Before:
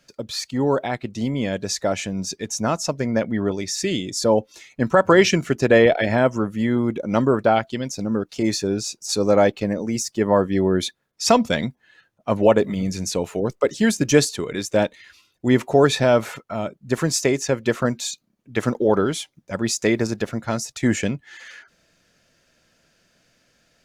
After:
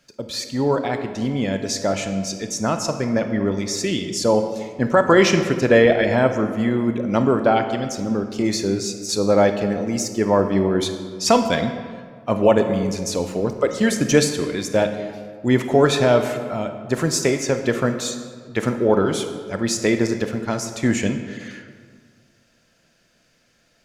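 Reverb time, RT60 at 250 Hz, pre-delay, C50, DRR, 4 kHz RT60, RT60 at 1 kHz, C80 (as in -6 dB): 1.8 s, 2.0 s, 26 ms, 8.0 dB, 7.0 dB, 1.1 s, 1.8 s, 9.5 dB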